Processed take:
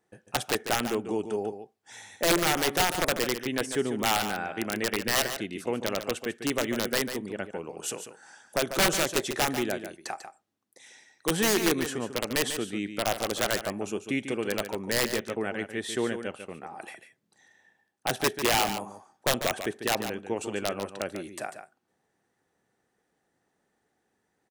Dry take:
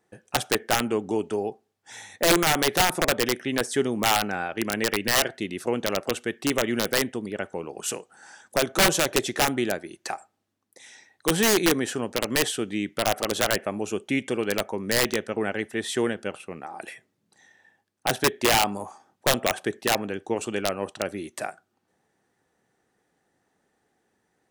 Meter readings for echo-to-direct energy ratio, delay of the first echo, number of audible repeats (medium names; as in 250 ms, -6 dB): -9.5 dB, 145 ms, 1